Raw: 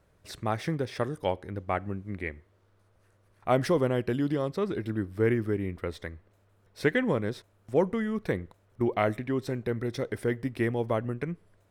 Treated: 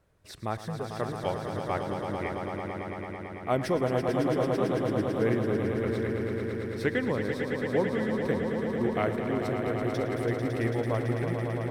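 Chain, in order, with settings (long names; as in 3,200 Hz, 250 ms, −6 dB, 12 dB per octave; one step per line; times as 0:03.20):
0:00.57–0:00.97: phaser with its sweep stopped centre 470 Hz, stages 8
on a send: echo that builds up and dies away 111 ms, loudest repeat 5, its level −8 dB
on the sum: level −3 dB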